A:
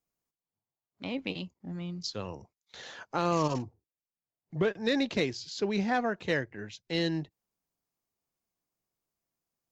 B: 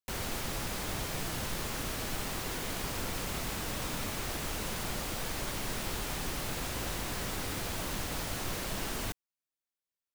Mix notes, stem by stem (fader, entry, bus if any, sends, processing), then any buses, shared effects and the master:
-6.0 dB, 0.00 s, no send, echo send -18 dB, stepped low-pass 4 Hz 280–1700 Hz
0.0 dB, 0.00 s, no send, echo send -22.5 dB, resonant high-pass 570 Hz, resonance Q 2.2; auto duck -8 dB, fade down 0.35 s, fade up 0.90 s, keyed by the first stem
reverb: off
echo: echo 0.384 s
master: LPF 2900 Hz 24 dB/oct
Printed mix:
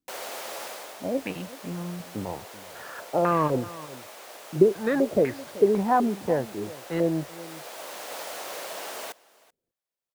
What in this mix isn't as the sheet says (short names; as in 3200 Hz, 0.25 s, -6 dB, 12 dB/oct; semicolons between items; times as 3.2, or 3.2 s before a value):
stem A -6.0 dB -> +2.5 dB; master: missing LPF 2900 Hz 24 dB/oct